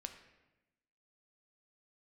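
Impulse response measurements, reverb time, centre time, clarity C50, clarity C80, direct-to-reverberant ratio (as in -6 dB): 1.0 s, 17 ms, 9.0 dB, 11.0 dB, 6.0 dB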